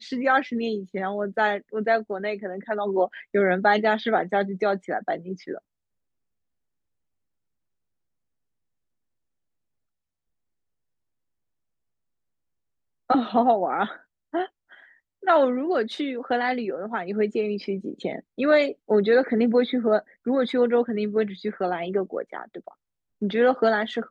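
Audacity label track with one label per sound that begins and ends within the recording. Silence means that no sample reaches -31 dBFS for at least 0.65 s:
13.100000	14.460000	sound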